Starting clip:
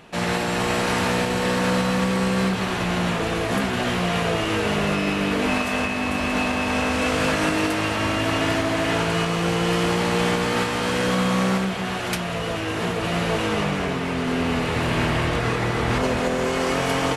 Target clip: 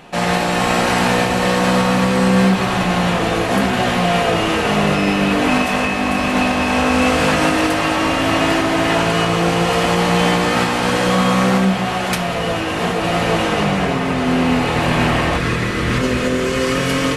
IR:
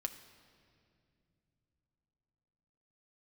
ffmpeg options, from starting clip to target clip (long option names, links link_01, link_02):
-filter_complex "[0:a]asetnsamples=nb_out_samples=441:pad=0,asendcmd='15.37 equalizer g -12.5',equalizer=frequency=770:width_type=o:width=0.61:gain=4[link_01];[1:a]atrim=start_sample=2205[link_02];[link_01][link_02]afir=irnorm=-1:irlink=0,volume=6.5dB"